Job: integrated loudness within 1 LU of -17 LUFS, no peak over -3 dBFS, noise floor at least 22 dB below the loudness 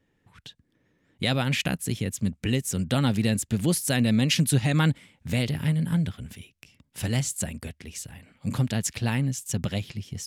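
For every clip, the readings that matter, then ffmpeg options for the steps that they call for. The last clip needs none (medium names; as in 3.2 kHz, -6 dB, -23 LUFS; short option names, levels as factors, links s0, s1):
loudness -26.0 LUFS; peak level -11.0 dBFS; loudness target -17.0 LUFS
-> -af "volume=2.82,alimiter=limit=0.708:level=0:latency=1"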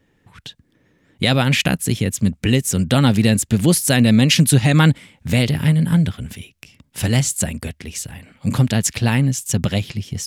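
loudness -17.0 LUFS; peak level -3.0 dBFS; noise floor -62 dBFS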